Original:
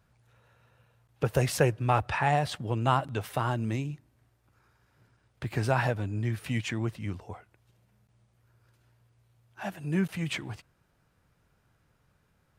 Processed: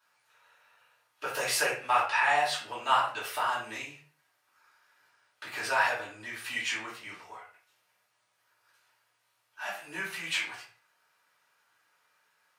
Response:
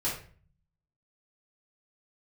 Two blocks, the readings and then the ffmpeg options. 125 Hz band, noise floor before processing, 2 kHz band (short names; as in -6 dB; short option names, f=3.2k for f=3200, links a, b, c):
-26.0 dB, -70 dBFS, +6.0 dB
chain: -filter_complex "[0:a]highpass=1.1k[a];[1:a]atrim=start_sample=2205,afade=t=out:st=0.33:d=0.01,atrim=end_sample=14994[b];[a][b]afir=irnorm=-1:irlink=0"